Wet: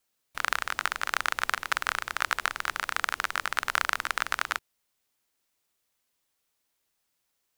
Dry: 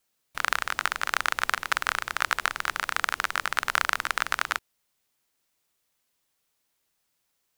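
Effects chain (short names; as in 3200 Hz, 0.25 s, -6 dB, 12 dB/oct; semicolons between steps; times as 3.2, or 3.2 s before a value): bell 160 Hz -4.5 dB 0.28 oct; gain -2 dB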